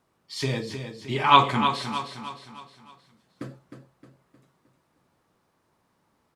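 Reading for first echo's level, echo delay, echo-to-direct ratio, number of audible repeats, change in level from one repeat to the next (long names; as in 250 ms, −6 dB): −8.5 dB, 310 ms, −7.5 dB, 4, −7.0 dB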